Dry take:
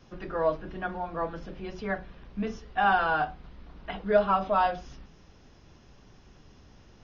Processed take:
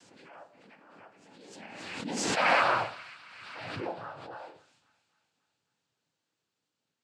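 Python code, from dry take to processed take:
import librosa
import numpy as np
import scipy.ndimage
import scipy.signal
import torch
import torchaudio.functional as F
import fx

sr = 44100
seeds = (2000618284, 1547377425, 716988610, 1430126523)

y = fx.freq_snap(x, sr, grid_st=3)
y = fx.doppler_pass(y, sr, speed_mps=50, closest_m=5.9, pass_at_s=2.62)
y = fx.noise_vocoder(y, sr, seeds[0], bands=8)
y = fx.echo_wet_highpass(y, sr, ms=270, feedback_pct=54, hz=2200.0, wet_db=-12.5)
y = fx.rev_schroeder(y, sr, rt60_s=0.46, comb_ms=27, drr_db=10.0)
y = fx.pre_swell(y, sr, db_per_s=30.0)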